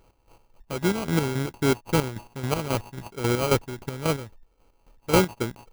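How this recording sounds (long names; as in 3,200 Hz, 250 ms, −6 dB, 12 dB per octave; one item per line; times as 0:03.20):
a buzz of ramps at a fixed pitch in blocks of 16 samples
chopped level 3.7 Hz, depth 65%, duty 40%
aliases and images of a low sample rate 1,800 Hz, jitter 0%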